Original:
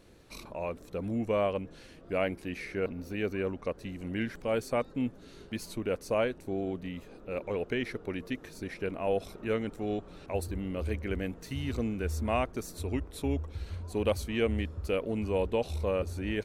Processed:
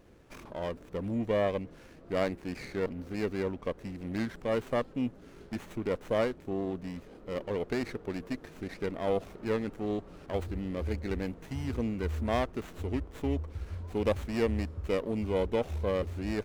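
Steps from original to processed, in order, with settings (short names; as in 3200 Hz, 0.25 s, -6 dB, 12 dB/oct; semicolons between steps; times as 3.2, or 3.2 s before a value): running maximum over 9 samples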